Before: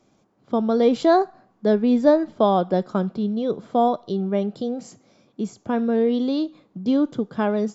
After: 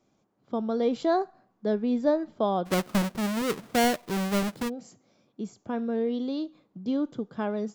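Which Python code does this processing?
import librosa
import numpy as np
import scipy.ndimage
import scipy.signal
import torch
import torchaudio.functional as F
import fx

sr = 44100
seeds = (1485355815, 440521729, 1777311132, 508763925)

y = fx.halfwave_hold(x, sr, at=(2.65, 4.68), fade=0.02)
y = y * 10.0 ** (-8.0 / 20.0)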